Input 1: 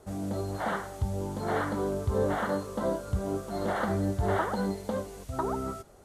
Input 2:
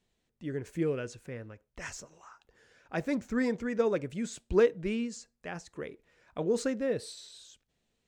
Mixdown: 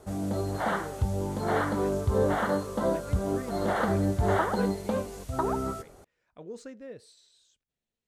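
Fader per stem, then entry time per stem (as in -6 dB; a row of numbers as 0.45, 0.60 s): +2.5, -12.5 dB; 0.00, 0.00 s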